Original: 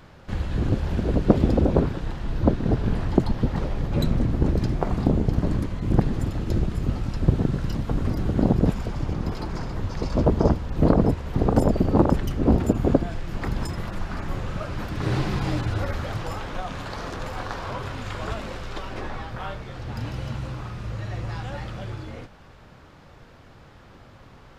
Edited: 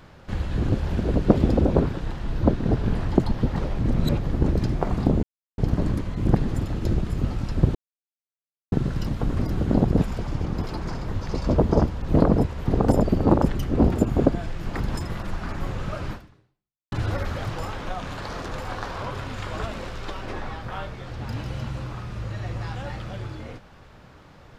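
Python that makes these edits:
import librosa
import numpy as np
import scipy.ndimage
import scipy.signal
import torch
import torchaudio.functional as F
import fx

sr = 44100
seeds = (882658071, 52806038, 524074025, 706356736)

y = fx.edit(x, sr, fx.reverse_span(start_s=3.79, length_s=0.53),
    fx.insert_silence(at_s=5.23, length_s=0.35),
    fx.insert_silence(at_s=7.4, length_s=0.97),
    fx.fade_out_span(start_s=14.78, length_s=0.82, curve='exp'), tone=tone)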